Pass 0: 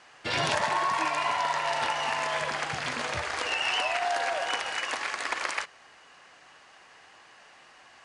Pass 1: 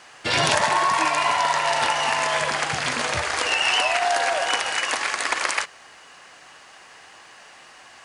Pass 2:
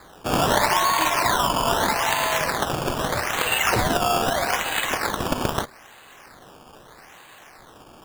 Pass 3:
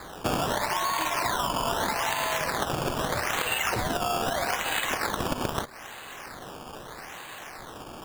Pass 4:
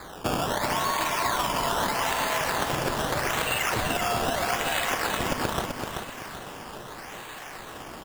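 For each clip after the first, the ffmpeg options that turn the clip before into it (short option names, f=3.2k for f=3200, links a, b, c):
-af "highshelf=f=8.6k:g=11.5,volume=6.5dB"
-af "acrusher=samples=15:mix=1:aa=0.000001:lfo=1:lforange=15:lforate=0.79"
-af "acompressor=threshold=-30dB:ratio=10,volume=5.5dB"
-af "aecho=1:1:384|768|1152|1536|1920:0.562|0.214|0.0812|0.0309|0.0117"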